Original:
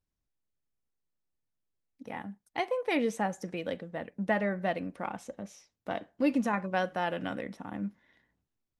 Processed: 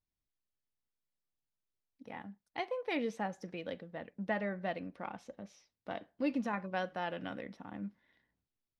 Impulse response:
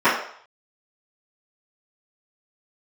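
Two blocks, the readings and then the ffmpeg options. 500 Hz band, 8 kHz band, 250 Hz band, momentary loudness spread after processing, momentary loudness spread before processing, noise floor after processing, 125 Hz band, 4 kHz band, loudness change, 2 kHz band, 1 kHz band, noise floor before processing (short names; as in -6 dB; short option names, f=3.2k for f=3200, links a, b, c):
-6.5 dB, -11.5 dB, -6.5 dB, 13 LU, 13 LU, under -85 dBFS, -6.5 dB, -5.0 dB, -6.5 dB, -6.0 dB, -6.5 dB, under -85 dBFS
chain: -af "highshelf=f=6.2k:t=q:w=1.5:g=-8,volume=-6.5dB"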